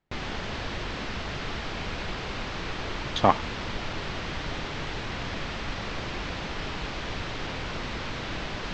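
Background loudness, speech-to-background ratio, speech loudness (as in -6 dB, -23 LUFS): -33.5 LUFS, 8.5 dB, -25.0 LUFS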